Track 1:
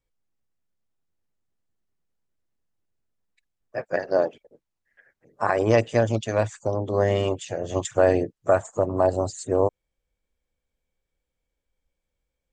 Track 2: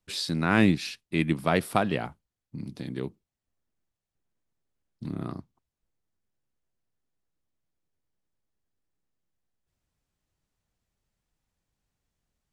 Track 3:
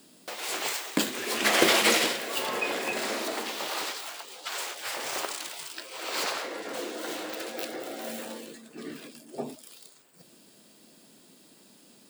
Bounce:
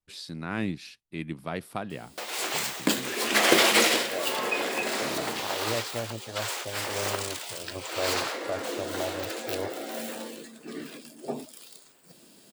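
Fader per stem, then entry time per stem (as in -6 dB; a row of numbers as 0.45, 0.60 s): -13.5, -9.5, +1.5 dB; 0.00, 0.00, 1.90 s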